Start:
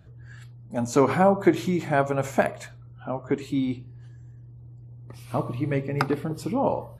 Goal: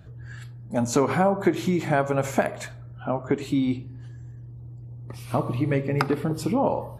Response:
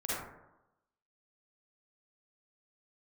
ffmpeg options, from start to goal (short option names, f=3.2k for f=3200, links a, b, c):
-filter_complex "[0:a]acompressor=threshold=-25dB:ratio=2.5,asplit=2[a][b];[1:a]atrim=start_sample=2205[c];[b][c]afir=irnorm=-1:irlink=0,volume=-25dB[d];[a][d]amix=inputs=2:normalize=0,volume=4.5dB"